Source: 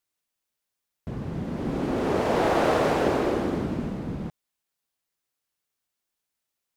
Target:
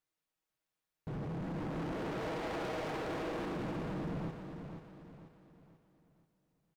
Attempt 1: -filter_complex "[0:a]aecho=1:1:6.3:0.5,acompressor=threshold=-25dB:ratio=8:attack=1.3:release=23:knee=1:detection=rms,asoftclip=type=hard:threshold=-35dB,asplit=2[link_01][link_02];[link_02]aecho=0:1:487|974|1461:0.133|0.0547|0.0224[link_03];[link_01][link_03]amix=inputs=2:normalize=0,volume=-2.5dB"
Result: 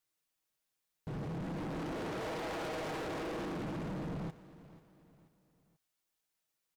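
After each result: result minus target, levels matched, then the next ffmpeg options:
echo-to-direct −10 dB; 8,000 Hz band +4.0 dB
-filter_complex "[0:a]aecho=1:1:6.3:0.5,acompressor=threshold=-25dB:ratio=8:attack=1.3:release=23:knee=1:detection=rms,asoftclip=type=hard:threshold=-35dB,asplit=2[link_01][link_02];[link_02]aecho=0:1:487|974|1461|1948|2435:0.422|0.173|0.0709|0.0291|0.0119[link_03];[link_01][link_03]amix=inputs=2:normalize=0,volume=-2.5dB"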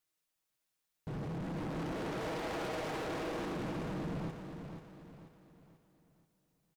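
8,000 Hz band +4.5 dB
-filter_complex "[0:a]aecho=1:1:6.3:0.5,acompressor=threshold=-25dB:ratio=8:attack=1.3:release=23:knee=1:detection=rms,highshelf=frequency=3400:gain=-9,asoftclip=type=hard:threshold=-35dB,asplit=2[link_01][link_02];[link_02]aecho=0:1:487|974|1461|1948|2435:0.422|0.173|0.0709|0.0291|0.0119[link_03];[link_01][link_03]amix=inputs=2:normalize=0,volume=-2.5dB"

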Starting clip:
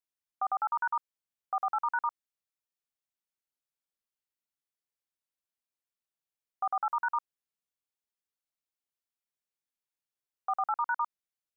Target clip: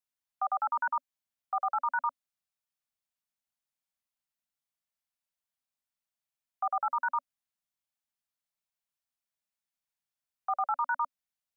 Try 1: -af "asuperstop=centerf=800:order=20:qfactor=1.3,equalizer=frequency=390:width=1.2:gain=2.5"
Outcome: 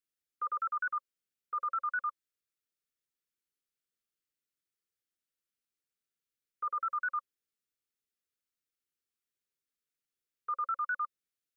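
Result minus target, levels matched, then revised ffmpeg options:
500 Hz band −8.5 dB
-af "asuperstop=centerf=390:order=20:qfactor=1.3,equalizer=frequency=390:width=1.2:gain=2.5"

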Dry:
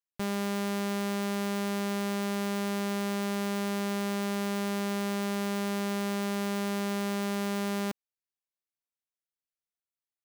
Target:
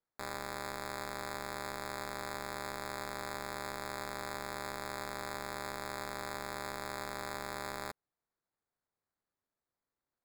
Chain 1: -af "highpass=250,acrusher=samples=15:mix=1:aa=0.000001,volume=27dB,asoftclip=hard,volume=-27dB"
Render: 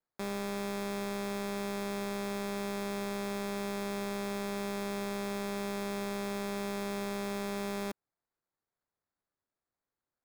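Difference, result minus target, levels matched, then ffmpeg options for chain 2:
250 Hz band +9.0 dB
-af "highpass=830,acrusher=samples=15:mix=1:aa=0.000001,volume=27dB,asoftclip=hard,volume=-27dB"

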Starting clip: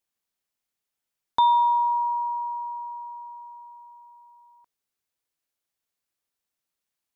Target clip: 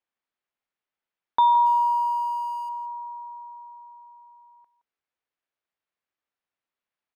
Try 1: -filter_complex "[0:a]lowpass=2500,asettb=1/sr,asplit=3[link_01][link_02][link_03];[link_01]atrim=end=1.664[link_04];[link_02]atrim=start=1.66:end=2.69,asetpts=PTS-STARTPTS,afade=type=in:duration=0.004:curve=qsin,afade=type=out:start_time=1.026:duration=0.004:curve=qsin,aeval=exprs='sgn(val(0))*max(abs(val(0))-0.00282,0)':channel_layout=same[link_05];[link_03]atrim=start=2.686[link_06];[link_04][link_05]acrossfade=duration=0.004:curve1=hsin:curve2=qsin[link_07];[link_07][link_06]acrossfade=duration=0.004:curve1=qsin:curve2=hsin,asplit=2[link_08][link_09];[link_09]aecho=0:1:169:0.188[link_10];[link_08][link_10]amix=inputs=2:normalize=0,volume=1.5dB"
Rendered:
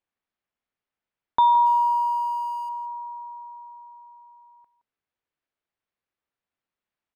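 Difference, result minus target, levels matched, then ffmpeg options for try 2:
250 Hz band +3.5 dB
-filter_complex "[0:a]lowpass=2500,lowshelf=frequency=280:gain=-8.5,asettb=1/sr,asplit=3[link_01][link_02][link_03];[link_01]atrim=end=1.664[link_04];[link_02]atrim=start=1.66:end=2.69,asetpts=PTS-STARTPTS,afade=type=in:duration=0.004:curve=qsin,afade=type=out:start_time=1.026:duration=0.004:curve=qsin,aeval=exprs='sgn(val(0))*max(abs(val(0))-0.00282,0)':channel_layout=same[link_05];[link_03]atrim=start=2.686[link_06];[link_04][link_05]acrossfade=duration=0.004:curve1=hsin:curve2=qsin[link_07];[link_07][link_06]acrossfade=duration=0.004:curve1=qsin:curve2=hsin,asplit=2[link_08][link_09];[link_09]aecho=0:1:169:0.188[link_10];[link_08][link_10]amix=inputs=2:normalize=0,volume=1.5dB"

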